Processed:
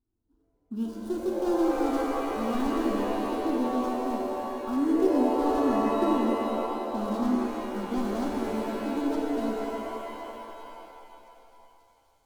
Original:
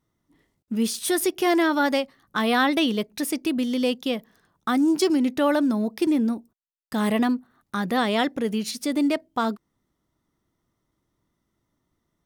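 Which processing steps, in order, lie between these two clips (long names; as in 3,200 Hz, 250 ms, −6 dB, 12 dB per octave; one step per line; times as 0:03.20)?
running median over 41 samples
low-shelf EQ 100 Hz +11.5 dB
phaser with its sweep stopped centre 560 Hz, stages 6
on a send: delay with a high-pass on its return 533 ms, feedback 77%, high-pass 3,400 Hz, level −16.5 dB
on the sum: reverb with rising layers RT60 2.8 s, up +7 semitones, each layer −2 dB, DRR −0.5 dB
level −7 dB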